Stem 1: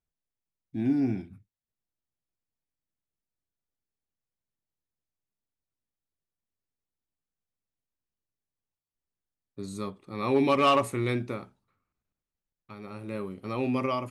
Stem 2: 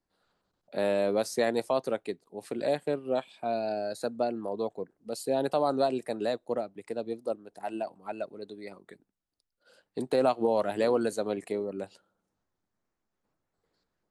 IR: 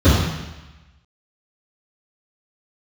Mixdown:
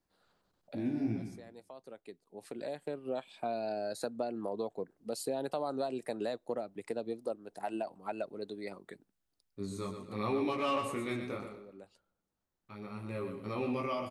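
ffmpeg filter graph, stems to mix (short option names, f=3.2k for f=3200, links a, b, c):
-filter_complex "[0:a]acompressor=threshold=-26dB:ratio=6,flanger=delay=17:depth=4.4:speed=0.76,volume=-1dB,asplit=3[a][b][c];[b]volume=-7.5dB[d];[1:a]acompressor=threshold=-34dB:ratio=4,volume=1dB[e];[c]apad=whole_len=621972[f];[e][f]sidechaincompress=threshold=-54dB:ratio=4:attack=10:release=1230[g];[d]aecho=0:1:121|242|363|484:1|0.31|0.0961|0.0298[h];[a][g][h]amix=inputs=3:normalize=0"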